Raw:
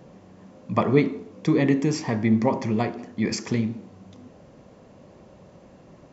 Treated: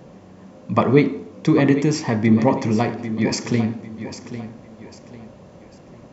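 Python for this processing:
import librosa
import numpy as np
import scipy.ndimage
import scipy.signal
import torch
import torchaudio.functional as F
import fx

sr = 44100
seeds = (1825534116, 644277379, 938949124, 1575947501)

y = fx.echo_feedback(x, sr, ms=798, feedback_pct=34, wet_db=-12.0)
y = F.gain(torch.from_numpy(y), 4.5).numpy()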